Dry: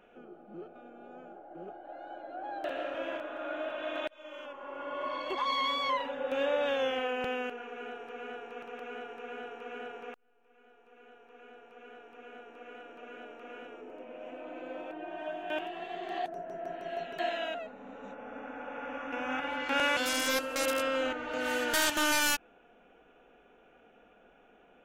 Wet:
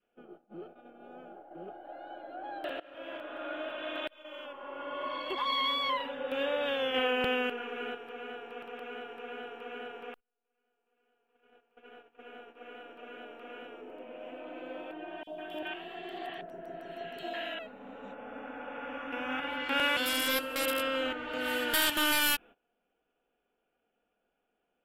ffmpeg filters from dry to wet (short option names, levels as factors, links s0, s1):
-filter_complex "[0:a]asettb=1/sr,asplit=3[s0][s1][s2];[s0]atrim=end=6.944[s3];[s1]atrim=start=6.94:end=7.95,asetpts=PTS-STARTPTS,afade=t=in:d=0.004:c=qsin,afade=t=out:st=1.006:d=0.004:c=qsin,acontrast=29[s4];[s2]atrim=start=7.946[s5];[s3][s4]acrossfade=d=0.004:c1=hsin:c2=qsin[s6];[s6][s5]acrossfade=d=0.004:c1=qsin:c2=hsin,asettb=1/sr,asplit=3[s7][s8][s9];[s7]atrim=end=15.234[s10];[s8]atrim=start=15.23:end=17.59,asetpts=PTS-STARTPTS,afade=t=in:d=0.004:c=qsin,afade=t=out:st=2.356:d=0.004:c=qsin,acrossover=split=850|3600[s11][s12][s13];[s11]adelay=40[s14];[s12]adelay=150[s15];[s14][s15][s13]amix=inputs=3:normalize=0,atrim=end_sample=104076[s16];[s9]atrim=start=17.586[s17];[s10][s16]acrossfade=d=0.004:c1=hsin:c2=qsin[s18];[s18][s17]acrossfade=d=0.004:c1=qsin:c2=hsin,asplit=2[s19][s20];[s19]atrim=end=2.8,asetpts=PTS-STARTPTS,afade=t=out:st=2.796:d=0.004:c=hsin:silence=0.0794328[s21];[s20]atrim=start=2.8,asetpts=PTS-STARTPTS,afade=t=in:d=0.57:silence=0.0794328[s22];[s21][s22]concat=n=2:v=0:a=1,adynamicequalizer=threshold=0.00562:dfrequency=700:dqfactor=1.7:tfrequency=700:tqfactor=1.7:attack=5:release=100:ratio=0.375:range=2:mode=cutabove:tftype=bell,agate=range=0.1:threshold=0.00316:ratio=16:detection=peak,equalizer=f=3150:t=o:w=0.33:g=5,equalizer=f=6300:t=o:w=0.33:g=-12,equalizer=f=12500:t=o:w=0.33:g=8"